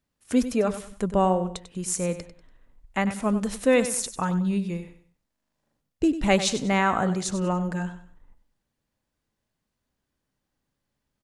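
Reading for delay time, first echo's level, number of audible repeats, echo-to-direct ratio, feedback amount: 96 ms, −12.0 dB, 3, −11.5 dB, 31%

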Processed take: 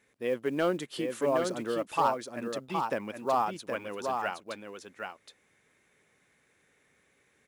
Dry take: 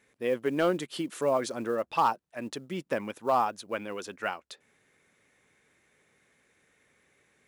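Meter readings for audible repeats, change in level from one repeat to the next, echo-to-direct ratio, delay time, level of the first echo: 1, repeats not evenly spaced, −5.0 dB, 769 ms, −5.0 dB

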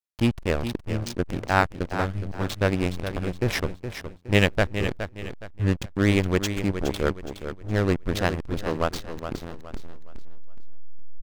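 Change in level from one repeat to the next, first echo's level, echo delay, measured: −9.5 dB, −9.5 dB, 417 ms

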